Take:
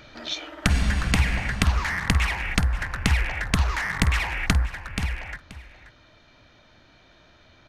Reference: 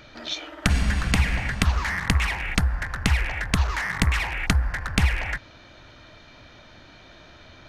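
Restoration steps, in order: inverse comb 0.53 s -15 dB; gain correction +7 dB, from 4.66

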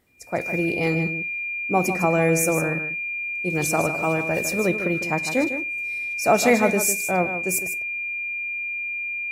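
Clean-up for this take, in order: notch 2400 Hz, Q 30; inverse comb 0.153 s -10 dB

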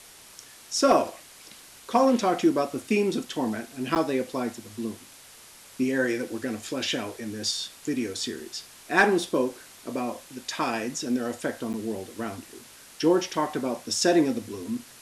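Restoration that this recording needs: clip repair -9 dBFS; interpolate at 3.95/11.73, 9.1 ms; denoiser 21 dB, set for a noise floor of -49 dBFS

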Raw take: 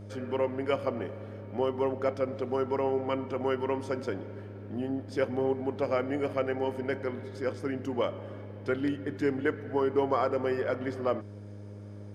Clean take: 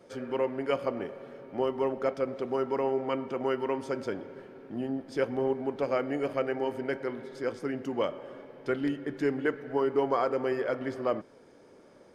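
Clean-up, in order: de-hum 102.2 Hz, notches 6

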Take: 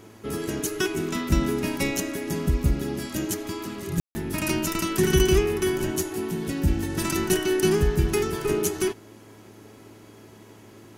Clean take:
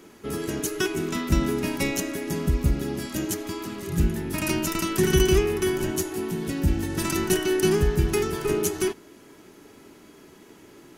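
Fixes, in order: de-hum 108.1 Hz, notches 10; room tone fill 4–4.15

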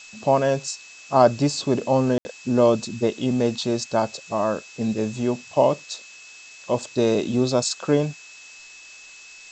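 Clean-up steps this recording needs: notch 2600 Hz, Q 30; room tone fill 2.18–2.25; noise print and reduce 22 dB

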